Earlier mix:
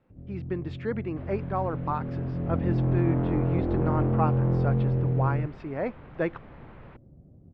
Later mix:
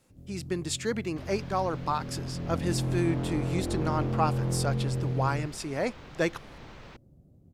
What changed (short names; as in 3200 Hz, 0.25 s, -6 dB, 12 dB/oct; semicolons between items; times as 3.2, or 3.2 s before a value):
first sound -5.0 dB; master: remove Bessel low-pass 1700 Hz, order 4